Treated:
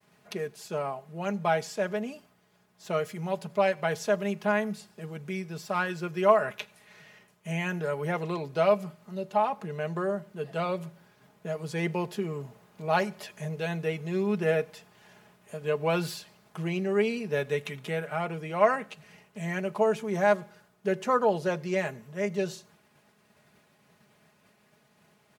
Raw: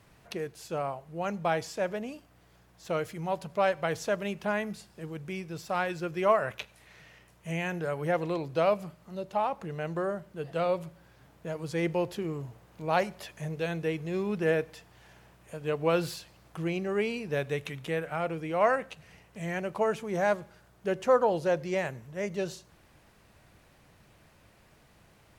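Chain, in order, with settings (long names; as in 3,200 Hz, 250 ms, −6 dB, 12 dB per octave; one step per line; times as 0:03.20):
downward expander −55 dBFS
high-pass filter 100 Hz 24 dB per octave
comb filter 4.8 ms, depth 62%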